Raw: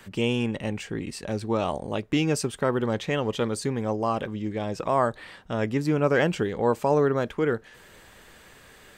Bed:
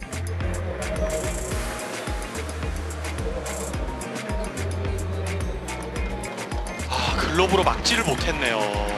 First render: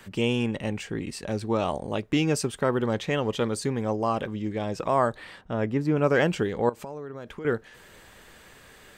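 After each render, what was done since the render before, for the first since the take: 5.41–5.97 s: treble shelf 3 kHz -12 dB; 6.69–7.45 s: compression 8:1, threshold -34 dBFS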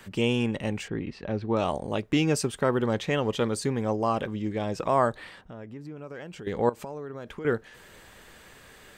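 0.88–1.57 s: distance through air 260 m; 5.28–6.47 s: compression 3:1, threshold -43 dBFS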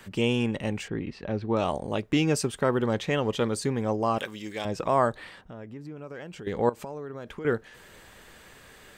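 4.18–4.65 s: tilt EQ +4 dB/octave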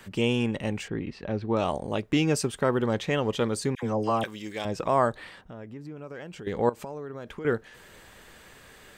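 3.75–4.24 s: phase dispersion lows, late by 77 ms, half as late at 1.1 kHz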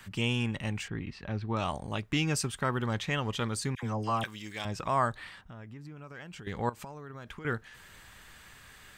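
FFT filter 110 Hz 0 dB, 500 Hz -12 dB, 730 Hz -6 dB, 1.2 kHz -1 dB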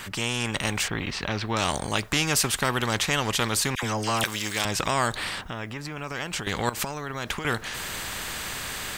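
level rider gain up to 8 dB; spectrum-flattening compressor 2:1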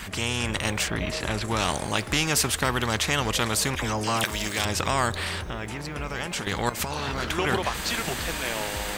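add bed -8.5 dB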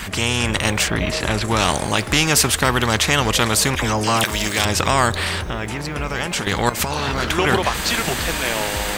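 trim +7.5 dB; peak limiter -2 dBFS, peak gain reduction 2.5 dB

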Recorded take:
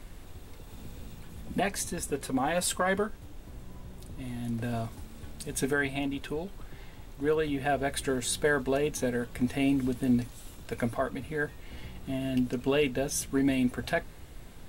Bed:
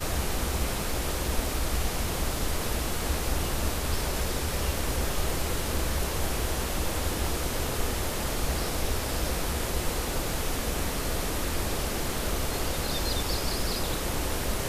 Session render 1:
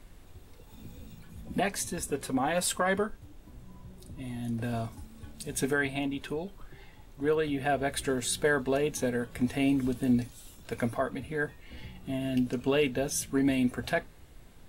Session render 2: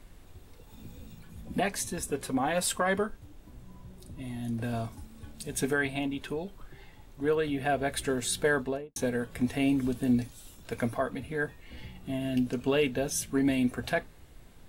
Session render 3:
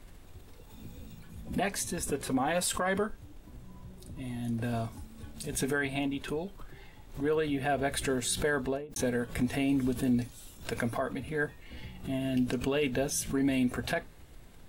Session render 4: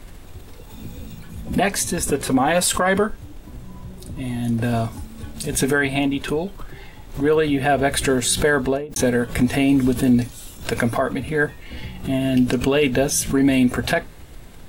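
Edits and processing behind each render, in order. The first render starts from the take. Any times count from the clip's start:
noise print and reduce 6 dB
8.55–8.96 s: studio fade out
peak limiter -20 dBFS, peak gain reduction 5 dB; swell ahead of each attack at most 140 dB/s
trim +11.5 dB

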